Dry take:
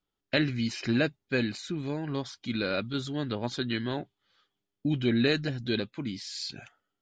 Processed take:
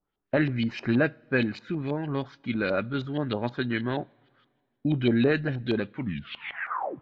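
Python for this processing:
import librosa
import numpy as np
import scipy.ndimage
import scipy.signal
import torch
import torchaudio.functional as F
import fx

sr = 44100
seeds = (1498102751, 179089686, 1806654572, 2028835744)

y = fx.tape_stop_end(x, sr, length_s=1.1)
y = fx.filter_lfo_lowpass(y, sr, shape='saw_up', hz=6.3, low_hz=680.0, high_hz=3500.0, q=1.5)
y = fx.rev_double_slope(y, sr, seeds[0], early_s=0.33, late_s=2.1, knee_db=-18, drr_db=19.5)
y = y * librosa.db_to_amplitude(2.5)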